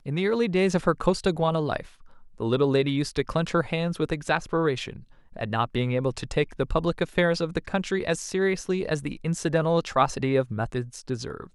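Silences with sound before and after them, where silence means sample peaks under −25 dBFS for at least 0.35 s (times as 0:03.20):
0:01.80–0:02.40
0:04.88–0:05.41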